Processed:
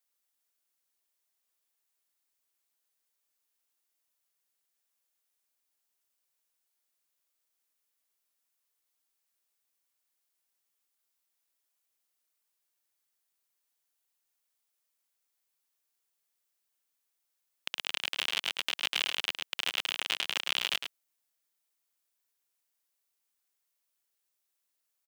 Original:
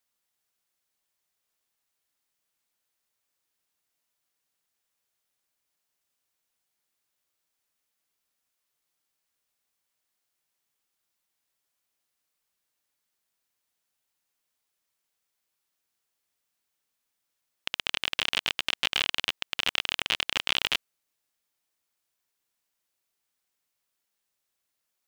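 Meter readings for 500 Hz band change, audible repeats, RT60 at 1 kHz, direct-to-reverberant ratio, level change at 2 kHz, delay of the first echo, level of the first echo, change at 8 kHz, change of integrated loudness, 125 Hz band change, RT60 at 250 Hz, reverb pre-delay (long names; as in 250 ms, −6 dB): −5.0 dB, 1, no reverb audible, no reverb audible, −4.0 dB, 107 ms, −7.5 dB, −1.5 dB, −4.0 dB, below −15 dB, no reverb audible, no reverb audible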